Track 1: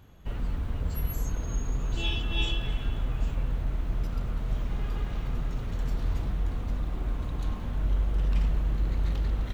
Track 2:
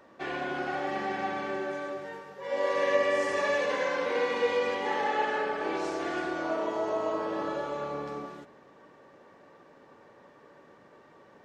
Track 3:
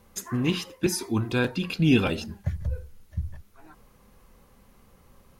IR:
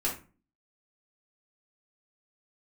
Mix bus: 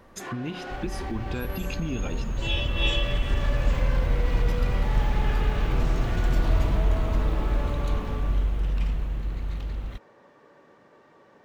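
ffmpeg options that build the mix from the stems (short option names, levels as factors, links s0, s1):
-filter_complex "[0:a]equalizer=f=2500:t=o:w=0.77:g=3.5,dynaudnorm=f=360:g=13:m=3.76,adelay=450,volume=0.596[s0];[1:a]alimiter=limit=0.0631:level=0:latency=1,asoftclip=type=tanh:threshold=0.0237,volume=1[s1];[2:a]aemphasis=mode=reproduction:type=50kf,acompressor=threshold=0.0251:ratio=6,volume=1.26,asplit=2[s2][s3];[s3]apad=whole_len=504550[s4];[s1][s4]sidechaincompress=threshold=0.0158:ratio=8:attack=9.2:release=122[s5];[s0][s5][s2]amix=inputs=3:normalize=0"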